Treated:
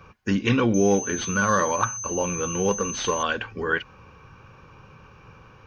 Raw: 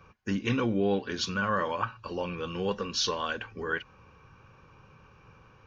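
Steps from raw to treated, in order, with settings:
0:00.74–0:03.23: switching amplifier with a slow clock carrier 6,200 Hz
level +7 dB

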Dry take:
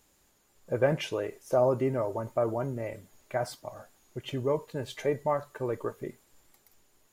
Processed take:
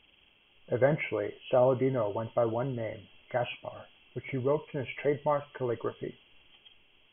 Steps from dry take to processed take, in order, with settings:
hearing-aid frequency compression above 2,000 Hz 4 to 1

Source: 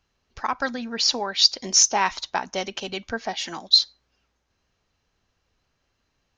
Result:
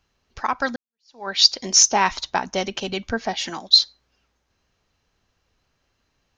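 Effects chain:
0:00.76–0:01.28: fade in exponential
0:01.91–0:03.50: low-shelf EQ 270 Hz +6.5 dB
level +2.5 dB

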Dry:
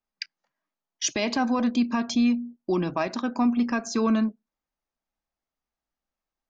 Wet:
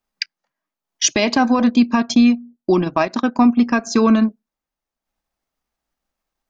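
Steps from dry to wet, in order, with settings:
transient designer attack +2 dB, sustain −7 dB, from 0:02.05 sustain −12 dB, from 0:03.65 sustain −6 dB
level +8.5 dB

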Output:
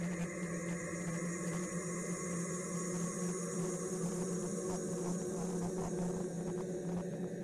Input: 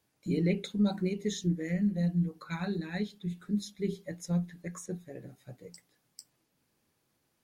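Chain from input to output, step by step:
extreme stretch with random phases 20×, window 0.50 s, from 0:04.65
wave folding −34 dBFS
on a send: feedback echo with a band-pass in the loop 287 ms, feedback 73%, band-pass 350 Hz, level −9 dB
on the sum: level +1 dB
AAC 32 kbit/s 44,100 Hz

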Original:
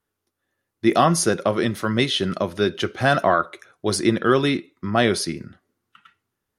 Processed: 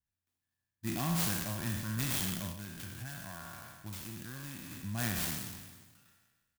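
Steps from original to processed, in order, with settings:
peak hold with a decay on every bin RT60 1.38 s
guitar amp tone stack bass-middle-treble 6-0-2
comb filter 1.2 ms, depth 85%
0:02.51–0:04.71: downward compressor, threshold −41 dBFS, peak gain reduction 11.5 dB
converter with an unsteady clock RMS 0.078 ms

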